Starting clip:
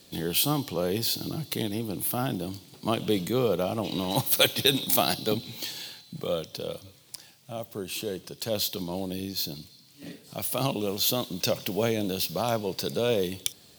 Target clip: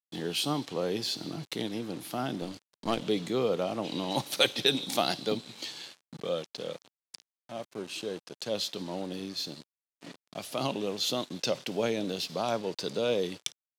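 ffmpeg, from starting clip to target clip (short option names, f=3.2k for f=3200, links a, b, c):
-filter_complex "[0:a]aeval=exprs='val(0)*gte(abs(val(0)),0.0106)':c=same,highpass=170,lowpass=6.7k,asettb=1/sr,asplit=3[a][b][c];[a]atrim=end=2.424[d];[b]atrim=start=2.42:end=3.02,asetpts=PTS-STARTPTS,afade=t=in:d=0.004:c=qsin,afade=t=out:st=0.596:d=0.004:c=qsin,aeval=exprs='0.251*(cos(1*acos(clip(val(0)/0.251,-1,1)))-cos(1*PI/2))+0.02*(cos(8*acos(clip(val(0)/0.251,-1,1)))-cos(8*PI/2))':c=same[e];[c]atrim=start=3.016[f];[d][e]acrossfade=d=0.004:c1=hsin:c2=qsin[g];[g][f]acrossfade=d=0.004:c1=qsin:c2=hsin,volume=-2.5dB"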